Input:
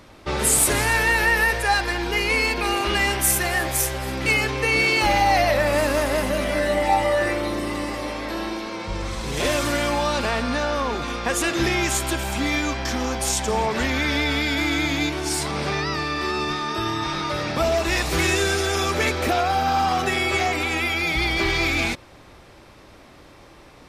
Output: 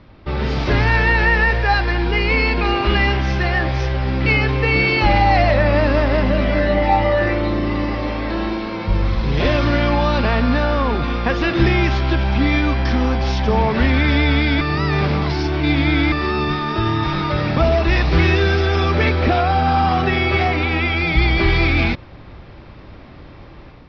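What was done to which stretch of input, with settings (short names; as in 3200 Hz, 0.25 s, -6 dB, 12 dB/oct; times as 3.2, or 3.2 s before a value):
14.61–16.12 reverse
whole clip: AGC gain up to 6.5 dB; steep low-pass 5400 Hz 72 dB/oct; tone controls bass +9 dB, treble -7 dB; gain -2.5 dB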